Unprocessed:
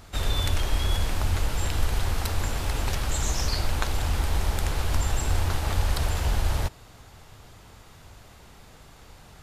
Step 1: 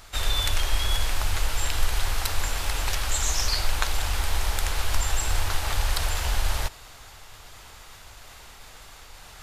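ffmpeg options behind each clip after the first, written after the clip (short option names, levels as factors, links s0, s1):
-af "equalizer=f=170:w=0.34:g=-14.5,areverse,acompressor=mode=upward:threshold=0.00631:ratio=2.5,areverse,volume=1.78"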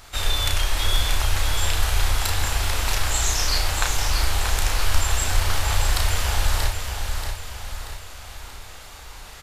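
-filter_complex "[0:a]asplit=2[s0][s1];[s1]adelay=33,volume=0.631[s2];[s0][s2]amix=inputs=2:normalize=0,aecho=1:1:633|1266|1899|2532|3165|3798:0.501|0.236|0.111|0.052|0.0245|0.0115,volume=1.19"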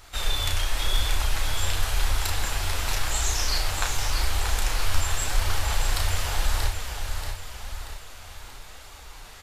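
-af "flanger=delay=2:depth=9:regen=-36:speed=0.9:shape=triangular"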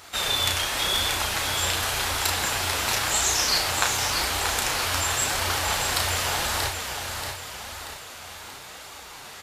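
-af "highpass=140,volume=1.88"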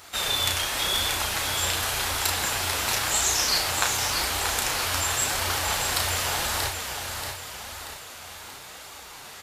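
-af "highshelf=f=9100:g=4,volume=0.841"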